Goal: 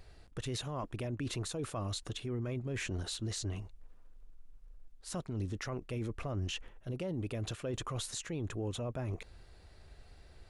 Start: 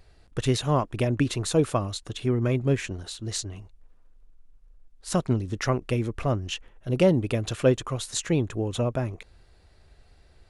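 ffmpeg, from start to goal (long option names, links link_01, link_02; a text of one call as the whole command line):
ffmpeg -i in.wav -af "areverse,acompressor=threshold=-30dB:ratio=6,areverse,alimiter=level_in=6dB:limit=-24dB:level=0:latency=1:release=11,volume=-6dB" out.wav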